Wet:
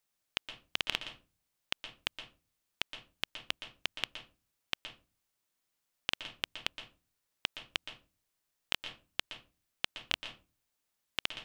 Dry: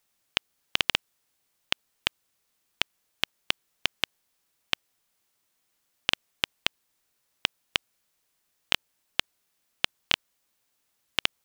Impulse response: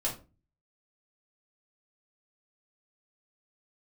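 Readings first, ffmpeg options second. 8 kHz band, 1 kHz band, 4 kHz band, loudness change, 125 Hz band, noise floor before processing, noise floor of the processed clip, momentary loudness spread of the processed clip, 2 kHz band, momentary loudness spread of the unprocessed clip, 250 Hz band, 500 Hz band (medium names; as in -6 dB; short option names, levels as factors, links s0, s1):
-8.0 dB, -8.0 dB, -8.0 dB, -8.0 dB, -7.5 dB, -75 dBFS, -83 dBFS, 14 LU, -8.0 dB, 5 LU, -7.5 dB, -7.5 dB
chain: -filter_complex "[0:a]asplit=2[s0][s1];[1:a]atrim=start_sample=2205,lowpass=8800,adelay=117[s2];[s1][s2]afir=irnorm=-1:irlink=0,volume=0.211[s3];[s0][s3]amix=inputs=2:normalize=0,volume=0.376"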